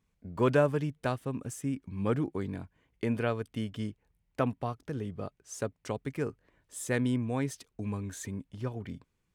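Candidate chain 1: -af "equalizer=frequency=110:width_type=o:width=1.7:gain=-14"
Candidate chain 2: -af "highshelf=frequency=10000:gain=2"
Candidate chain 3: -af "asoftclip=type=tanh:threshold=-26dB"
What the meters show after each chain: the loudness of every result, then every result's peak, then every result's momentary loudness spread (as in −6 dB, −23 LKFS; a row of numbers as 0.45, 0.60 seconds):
−36.5, −33.5, −36.5 LKFS; −14.5, −13.5, −26.0 dBFS; 13, 12, 10 LU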